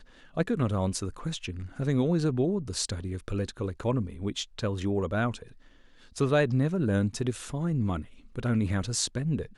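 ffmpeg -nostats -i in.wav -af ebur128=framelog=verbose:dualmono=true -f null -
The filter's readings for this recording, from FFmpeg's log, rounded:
Integrated loudness:
  I:         -26.5 LUFS
  Threshold: -36.8 LUFS
Loudness range:
  LRA:         3.3 LU
  Threshold: -46.8 LUFS
  LRA low:   -28.7 LUFS
  LRA high:  -25.5 LUFS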